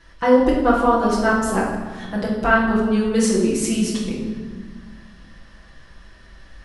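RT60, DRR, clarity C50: 1.5 s, -7.0 dB, 2.0 dB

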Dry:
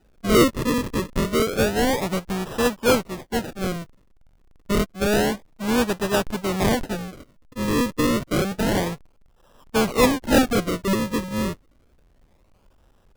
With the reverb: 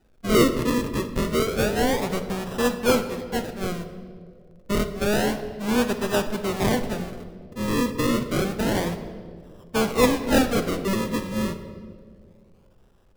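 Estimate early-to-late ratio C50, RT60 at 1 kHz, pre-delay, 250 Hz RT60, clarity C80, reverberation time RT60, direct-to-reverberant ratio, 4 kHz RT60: 10.5 dB, 1.7 s, 8 ms, 2.4 s, 12.0 dB, 2.2 s, 7.5 dB, 1.3 s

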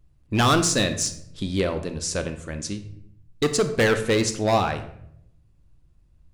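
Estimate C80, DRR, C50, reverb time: 13.5 dB, 8.0 dB, 11.0 dB, 0.70 s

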